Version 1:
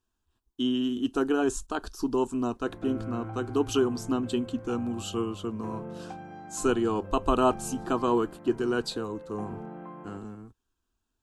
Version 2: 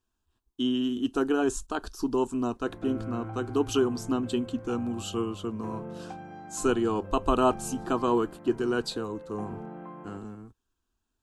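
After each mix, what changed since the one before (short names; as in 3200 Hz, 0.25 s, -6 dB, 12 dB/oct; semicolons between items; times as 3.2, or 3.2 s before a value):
none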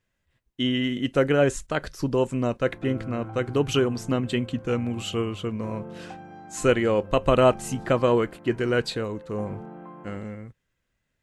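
speech: remove fixed phaser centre 550 Hz, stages 6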